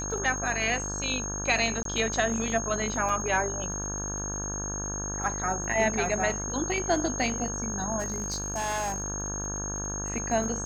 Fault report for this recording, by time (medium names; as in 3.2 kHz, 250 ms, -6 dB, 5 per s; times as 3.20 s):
buzz 50 Hz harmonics 34 -36 dBFS
crackle 26 per s -38 dBFS
whine 6.5 kHz -33 dBFS
1.83–1.85 s: dropout 23 ms
3.09 s: dropout 3.7 ms
7.99–9.02 s: clipped -26 dBFS